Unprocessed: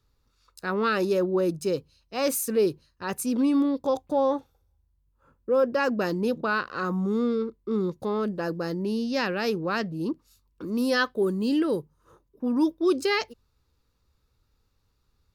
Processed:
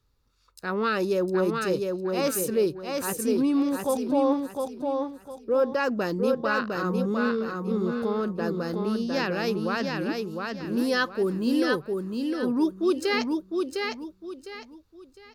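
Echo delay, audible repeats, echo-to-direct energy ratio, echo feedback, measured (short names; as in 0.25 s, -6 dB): 0.706 s, 3, -3.5 dB, 30%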